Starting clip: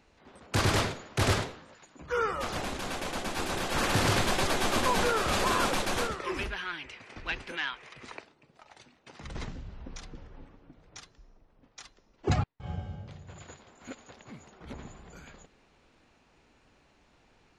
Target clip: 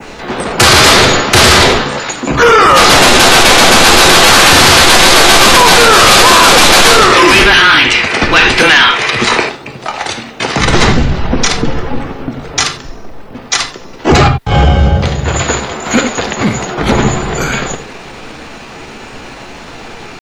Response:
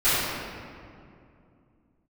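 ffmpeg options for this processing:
-filter_complex "[0:a]adynamicequalizer=threshold=0.00631:dfrequency=4200:dqfactor=1.1:tfrequency=4200:tqfactor=1.1:attack=5:release=100:ratio=0.375:range=2:mode=boostabove:tftype=bell,acompressor=threshold=-29dB:ratio=16,atempo=0.87,asplit=2[link_01][link_02];[1:a]atrim=start_sample=2205,atrim=end_sample=4410[link_03];[link_02][link_03]afir=irnorm=-1:irlink=0,volume=-20.5dB[link_04];[link_01][link_04]amix=inputs=2:normalize=0,afreqshift=-16,acontrast=27,lowshelf=frequency=110:gain=-6.5,apsyclip=31.5dB,volume=-1.5dB"

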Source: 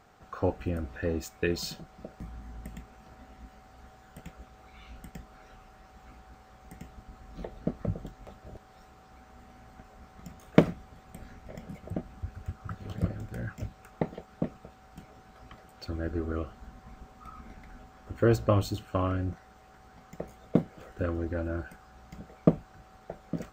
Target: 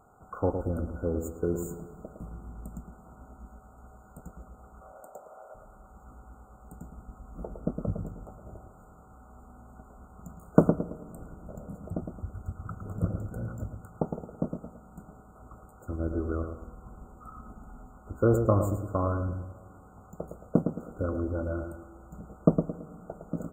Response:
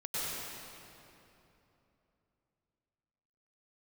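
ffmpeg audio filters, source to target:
-filter_complex "[0:a]asettb=1/sr,asplit=3[link_01][link_02][link_03];[link_01]atrim=end=4.814[link_04];[link_02]atrim=start=4.81:end=5.55,asetpts=PTS-STARTPTS,afade=type=in:duration=0.004:curve=qsin,afade=type=out:start_time=0.736:duration=0.004:curve=qsin,highpass=frequency=580:width_type=q:width=4.9[link_05];[link_03]atrim=start=5.546[link_06];[link_04][link_05]acrossfade=duration=0.004:curve1=hsin:curve2=qsin[link_07];[link_07][link_06]acrossfade=duration=0.004:curve1=qsin:curve2=hsin,asplit=2[link_08][link_09];[link_09]adelay=110,lowpass=frequency=1400:poles=1,volume=-6dB,asplit=2[link_10][link_11];[link_11]adelay=110,lowpass=frequency=1400:poles=1,volume=0.36,asplit=2[link_12][link_13];[link_13]adelay=110,lowpass=frequency=1400:poles=1,volume=0.36,asplit=2[link_14][link_15];[link_15]adelay=110,lowpass=frequency=1400:poles=1,volume=0.36[link_16];[link_08][link_10][link_12][link_14][link_16]amix=inputs=5:normalize=0,asplit=2[link_17][link_18];[1:a]atrim=start_sample=2205[link_19];[link_18][link_19]afir=irnorm=-1:irlink=0,volume=-25dB[link_20];[link_17][link_20]amix=inputs=2:normalize=0,afftfilt=real='re*(1-between(b*sr/4096,1500,6700))':imag='im*(1-between(b*sr/4096,1500,6700))':win_size=4096:overlap=0.75"

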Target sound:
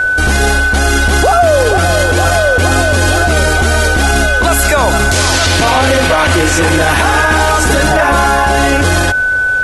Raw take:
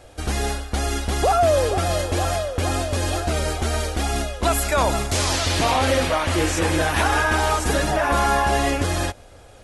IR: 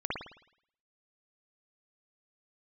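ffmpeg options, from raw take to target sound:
-af "aeval=exprs='val(0)+0.0447*sin(2*PI*1500*n/s)':channel_layout=same,alimiter=level_in=18.5dB:limit=-1dB:release=50:level=0:latency=1,volume=-1dB"

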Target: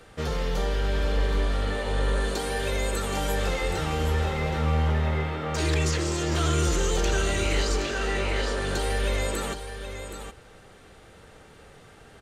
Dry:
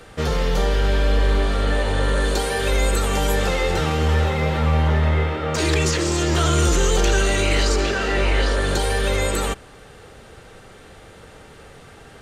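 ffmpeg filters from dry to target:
ffmpeg -i in.wav -af "aecho=1:1:772:0.355,volume=-7dB" out.wav

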